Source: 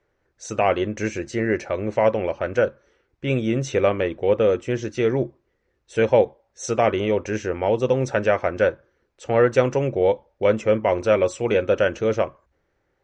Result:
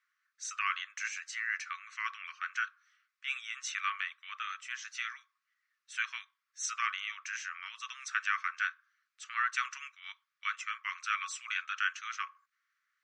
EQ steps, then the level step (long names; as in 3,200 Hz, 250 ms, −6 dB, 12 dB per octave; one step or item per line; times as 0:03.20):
Chebyshev high-pass filter 1,100 Hz, order 8
−3.0 dB